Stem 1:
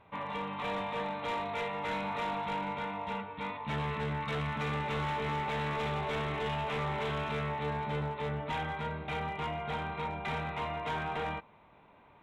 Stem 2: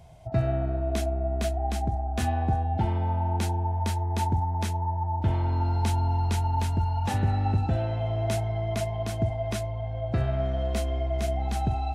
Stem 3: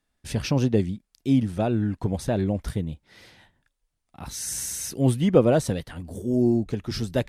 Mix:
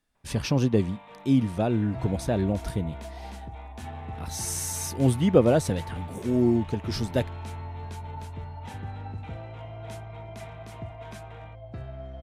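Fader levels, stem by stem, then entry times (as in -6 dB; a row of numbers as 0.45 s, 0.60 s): -12.5 dB, -12.5 dB, -1.0 dB; 0.15 s, 1.60 s, 0.00 s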